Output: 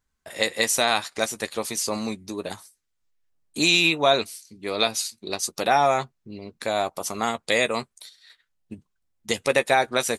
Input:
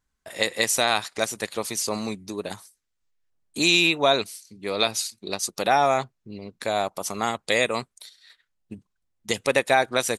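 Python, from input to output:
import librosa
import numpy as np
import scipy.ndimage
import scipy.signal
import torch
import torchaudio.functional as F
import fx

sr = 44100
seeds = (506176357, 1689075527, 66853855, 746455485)

y = fx.doubler(x, sr, ms=13.0, db=-11)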